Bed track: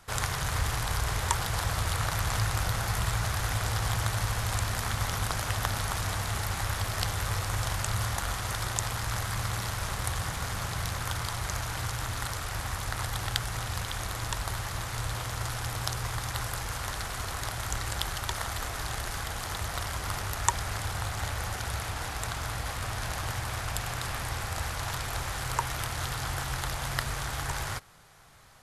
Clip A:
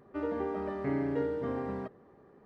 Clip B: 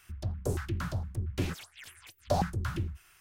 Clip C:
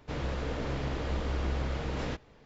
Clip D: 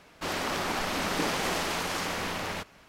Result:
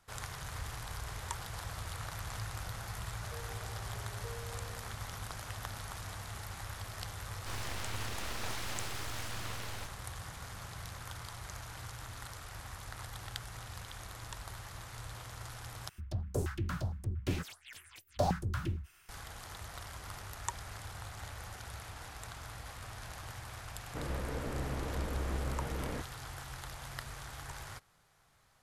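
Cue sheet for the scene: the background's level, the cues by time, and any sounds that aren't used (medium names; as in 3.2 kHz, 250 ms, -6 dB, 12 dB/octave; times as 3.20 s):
bed track -12.5 dB
3.08 s: add A -14.5 dB + steep high-pass 430 Hz 72 dB/octave
7.24 s: add D -8.5 dB + full-wave rectifier
15.89 s: replace with B -2.5 dB
23.86 s: add C -4.5 dB + low-pass 2.3 kHz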